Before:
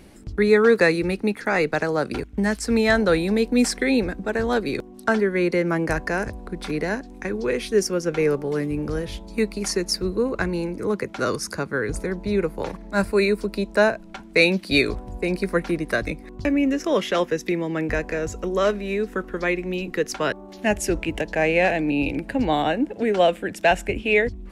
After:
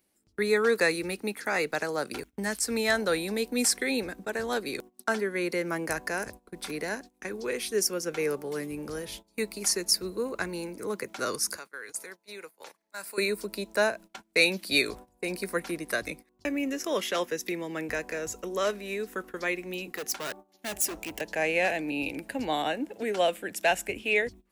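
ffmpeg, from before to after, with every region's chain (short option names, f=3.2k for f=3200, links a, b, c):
-filter_complex "[0:a]asettb=1/sr,asplit=3[a][b][c];[a]atrim=end=11.574[d];[b]atrim=start=11.57:end=13.18,asetpts=PTS-STARTPTS,afade=t=in:d=0.004:c=qsin,afade=t=out:st=1.606:d=0.004:c=qsin,highpass=f=1.3k:p=1,acompressor=threshold=-33dB:ratio=2:attack=3.2:release=140:knee=1:detection=peak[e];[c]atrim=start=13.176[f];[d][e]acrossfade=d=0.004:c1=hsin:c2=qsin[g];[g][f]acrossfade=d=0.004:c1=qsin:c2=hsin,asettb=1/sr,asplit=3[h][i][j];[h]atrim=end=19.954[k];[i]atrim=start=19.95:end=21.21,asetpts=PTS-STARTPTS,afade=t=in:d=0.004:c=qsin,afade=t=out:st=1.256:d=0.004:c=qsin,aeval=exprs='val(0)+0.00316*sin(2*PI*760*n/s)':c=same,asoftclip=type=hard:threshold=-25dB[l];[j]atrim=start=21.206[m];[k][l]acrossfade=d=0.004:c1=hsin:c2=qsin[n];[n][m]acrossfade=d=0.004:c1=qsin:c2=hsin,aemphasis=mode=production:type=bsi,agate=range=-19dB:threshold=-37dB:ratio=16:detection=peak,volume=-6.5dB"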